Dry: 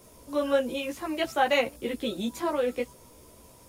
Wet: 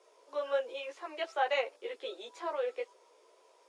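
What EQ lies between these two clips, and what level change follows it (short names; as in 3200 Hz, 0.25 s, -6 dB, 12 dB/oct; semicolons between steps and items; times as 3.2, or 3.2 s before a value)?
elliptic high-pass 400 Hz, stop band 60 dB; LPF 9800 Hz 12 dB/oct; air absorption 86 m; -5.5 dB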